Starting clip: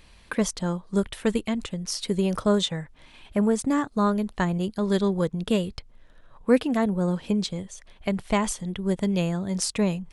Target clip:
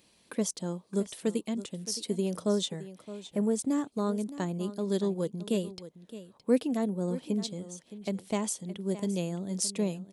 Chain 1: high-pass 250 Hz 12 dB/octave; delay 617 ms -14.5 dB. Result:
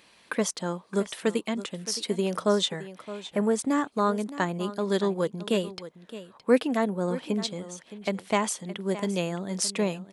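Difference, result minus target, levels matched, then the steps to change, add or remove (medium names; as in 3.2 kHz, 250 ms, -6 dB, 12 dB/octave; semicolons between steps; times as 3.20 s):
2 kHz band +9.0 dB
add after high-pass: peaking EQ 1.5 kHz -14 dB 2.6 oct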